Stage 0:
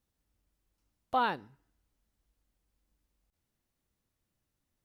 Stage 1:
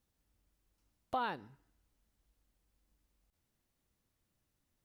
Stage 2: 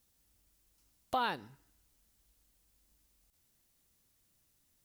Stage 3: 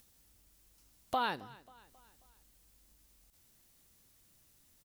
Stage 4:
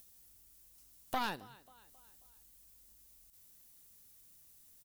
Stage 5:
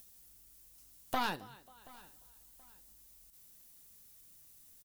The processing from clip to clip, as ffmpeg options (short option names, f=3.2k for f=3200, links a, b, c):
-af "acompressor=threshold=-37dB:ratio=2.5,volume=1dB"
-af "highshelf=f=3.4k:g=11.5,volume=2dB"
-af "acompressor=mode=upward:threshold=-58dB:ratio=2.5,aecho=1:1:269|538|807|1076:0.0841|0.0421|0.021|0.0105"
-af "crystalizer=i=1.5:c=0,aeval=exprs='0.112*(cos(1*acos(clip(val(0)/0.112,-1,1)))-cos(1*PI/2))+0.0224*(cos(4*acos(clip(val(0)/0.112,-1,1)))-cos(4*PI/2))':c=same,volume=-4dB"
-af "flanger=delay=4.6:depth=3.2:regen=-70:speed=0.53:shape=triangular,aecho=1:1:728|1456:0.0708|0.0212,volume=6.5dB"